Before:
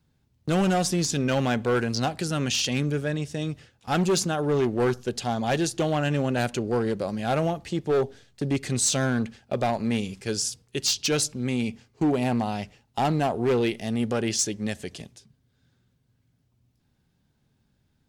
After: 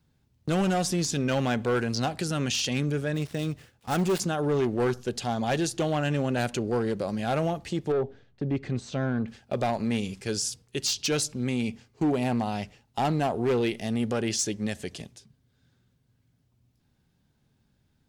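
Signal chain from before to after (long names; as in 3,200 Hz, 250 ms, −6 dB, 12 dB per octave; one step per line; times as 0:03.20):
0:03.14–0:04.20: gap after every zero crossing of 0.089 ms
brickwall limiter −20 dBFS, peak gain reduction 5 dB
0:07.92–0:09.28: head-to-tape spacing loss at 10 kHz 31 dB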